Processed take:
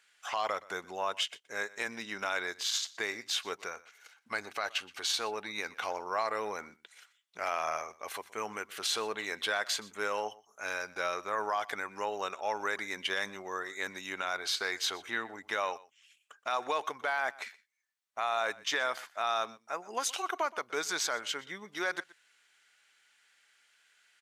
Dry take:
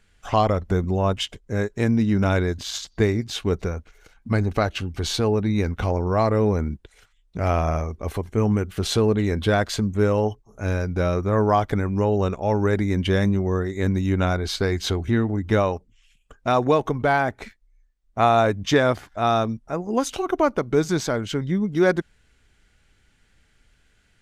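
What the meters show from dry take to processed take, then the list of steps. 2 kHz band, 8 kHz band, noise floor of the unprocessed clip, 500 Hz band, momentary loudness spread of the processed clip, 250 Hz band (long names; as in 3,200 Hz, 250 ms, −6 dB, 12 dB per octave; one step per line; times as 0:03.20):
−3.5 dB, −2.0 dB, −62 dBFS, −15.5 dB, 8 LU, −25.5 dB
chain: high-pass filter 1,100 Hz 12 dB per octave
brickwall limiter −21 dBFS, peak gain reduction 10.5 dB
single-tap delay 122 ms −21 dB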